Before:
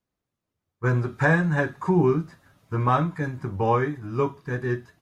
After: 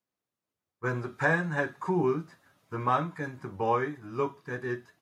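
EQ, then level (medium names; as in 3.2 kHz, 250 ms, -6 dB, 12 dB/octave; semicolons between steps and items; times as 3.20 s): high-pass 300 Hz 6 dB/octave; -3.5 dB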